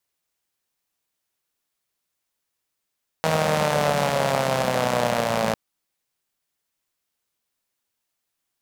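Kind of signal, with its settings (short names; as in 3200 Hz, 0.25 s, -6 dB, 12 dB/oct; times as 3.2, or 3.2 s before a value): four-cylinder engine model, changing speed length 2.30 s, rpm 4800, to 3300, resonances 190/570 Hz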